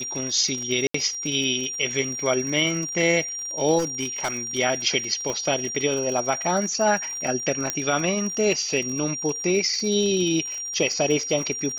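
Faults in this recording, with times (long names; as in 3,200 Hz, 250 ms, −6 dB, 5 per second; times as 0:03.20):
surface crackle 60 per second −30 dBFS
whistle 5,700 Hz −29 dBFS
0:00.87–0:00.94: drop-out 74 ms
0:03.78–0:04.59: clipping −21 dBFS
0:05.30: click −16 dBFS
0:07.70: click −8 dBFS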